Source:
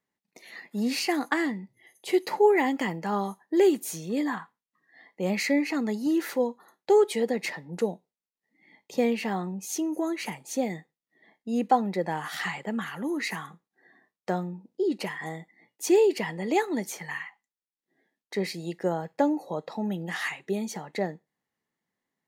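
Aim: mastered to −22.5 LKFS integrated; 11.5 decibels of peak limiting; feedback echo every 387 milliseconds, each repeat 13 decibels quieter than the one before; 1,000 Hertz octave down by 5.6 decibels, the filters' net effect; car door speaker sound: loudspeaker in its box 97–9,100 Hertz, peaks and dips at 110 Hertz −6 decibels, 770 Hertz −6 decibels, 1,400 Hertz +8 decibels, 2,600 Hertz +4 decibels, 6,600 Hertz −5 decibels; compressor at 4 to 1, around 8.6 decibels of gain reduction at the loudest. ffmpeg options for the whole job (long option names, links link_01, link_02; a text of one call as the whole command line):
ffmpeg -i in.wav -af "equalizer=frequency=1000:width_type=o:gain=-4,acompressor=threshold=-27dB:ratio=4,alimiter=level_in=2.5dB:limit=-24dB:level=0:latency=1,volume=-2.5dB,highpass=97,equalizer=frequency=110:width_type=q:width=4:gain=-6,equalizer=frequency=770:width_type=q:width=4:gain=-6,equalizer=frequency=1400:width_type=q:width=4:gain=8,equalizer=frequency=2600:width_type=q:width=4:gain=4,equalizer=frequency=6600:width_type=q:width=4:gain=-5,lowpass=frequency=9100:width=0.5412,lowpass=frequency=9100:width=1.3066,aecho=1:1:387|774|1161:0.224|0.0493|0.0108,volume=13dB" out.wav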